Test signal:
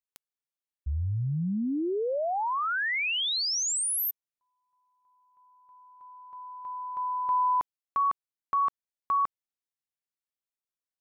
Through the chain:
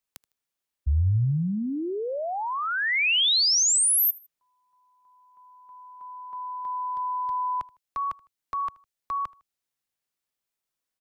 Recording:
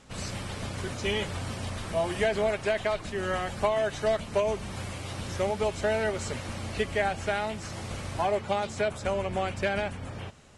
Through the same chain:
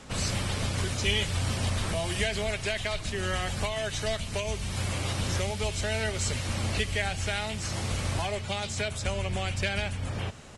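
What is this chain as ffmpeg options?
-filter_complex "[0:a]acrossover=split=130|2300[s0][s1][s2];[s1]acompressor=threshold=0.0158:ratio=6:attack=0.12:release=853:knee=2.83:detection=peak[s3];[s0][s3][s2]amix=inputs=3:normalize=0,aecho=1:1:78|156:0.0708|0.0262,volume=2.37"

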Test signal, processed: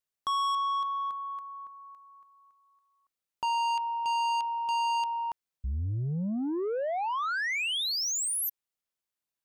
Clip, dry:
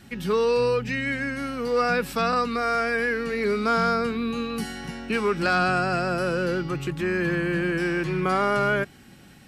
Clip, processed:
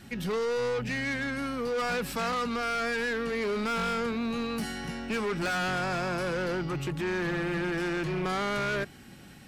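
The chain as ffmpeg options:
-af "asoftclip=type=tanh:threshold=0.0447"

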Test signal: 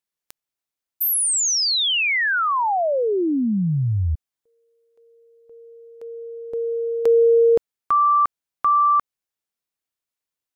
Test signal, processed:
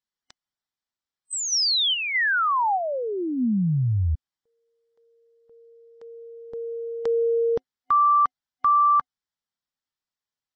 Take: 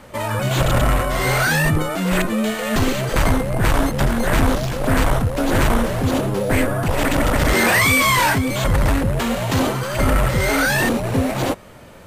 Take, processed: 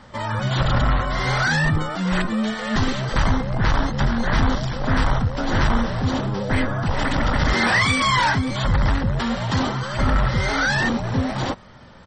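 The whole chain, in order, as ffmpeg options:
-af "superequalizer=6b=0.562:7b=0.501:8b=0.562:12b=0.501:15b=0.501,aresample=22050,aresample=44100,volume=0.891" -ar 48000 -c:a libmp3lame -b:a 32k

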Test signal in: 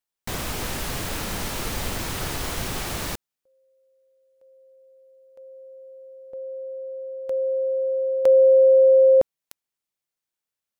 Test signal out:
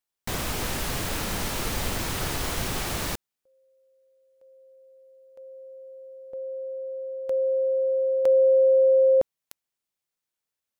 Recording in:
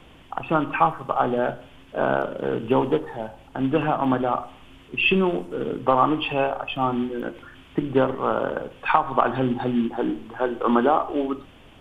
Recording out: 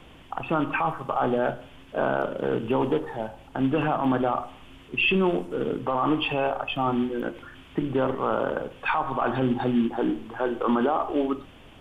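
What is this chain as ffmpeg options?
-af "alimiter=limit=0.188:level=0:latency=1:release=13"

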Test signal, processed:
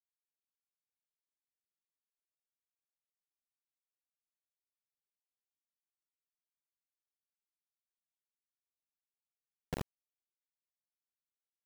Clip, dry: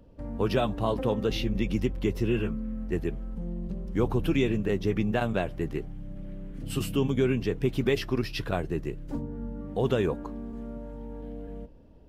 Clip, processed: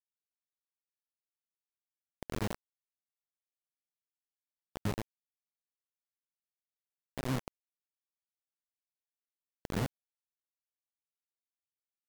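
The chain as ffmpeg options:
-af "bandpass=f=140:t=q:w=1.5:csg=0,acompressor=threshold=0.00794:ratio=5,aphaser=in_gain=1:out_gain=1:delay=3.8:decay=0.79:speed=0.41:type=triangular,acrusher=bits=4:mix=0:aa=0.000001,volume=0.708"

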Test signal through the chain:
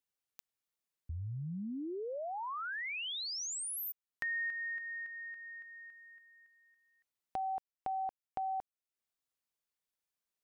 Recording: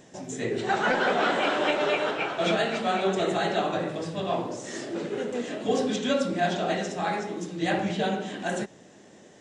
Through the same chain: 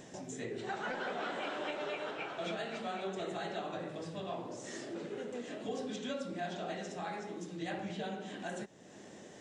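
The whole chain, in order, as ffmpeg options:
-af "acompressor=threshold=0.00316:ratio=2,volume=1.12"

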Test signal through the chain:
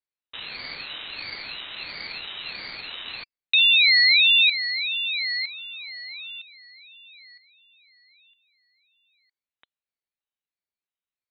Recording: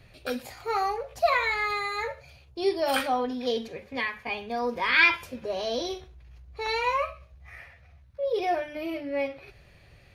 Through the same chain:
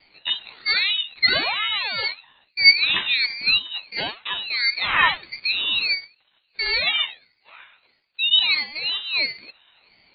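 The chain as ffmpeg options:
-filter_complex "[0:a]highpass=f=380:t=q:w=3.4,asplit=2[s0][s1];[s1]aeval=exprs='sgn(val(0))*max(abs(val(0))-0.00596,0)':c=same,volume=0.282[s2];[s0][s2]amix=inputs=2:normalize=0,lowpass=f=3200:t=q:w=0.5098,lowpass=f=3200:t=q:w=0.6013,lowpass=f=3200:t=q:w=0.9,lowpass=f=3200:t=q:w=2.563,afreqshift=-3800,aeval=exprs='val(0)*sin(2*PI*780*n/s+780*0.55/1.5*sin(2*PI*1.5*n/s))':c=same,volume=1.33"

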